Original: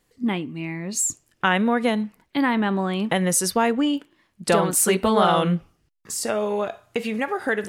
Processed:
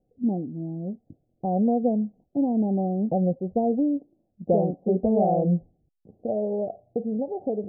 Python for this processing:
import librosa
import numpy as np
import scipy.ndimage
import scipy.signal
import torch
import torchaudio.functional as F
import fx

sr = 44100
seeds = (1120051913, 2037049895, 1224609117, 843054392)

y = scipy.signal.sosfilt(scipy.signal.cheby1(6, 3, 770.0, 'lowpass', fs=sr, output='sos'), x)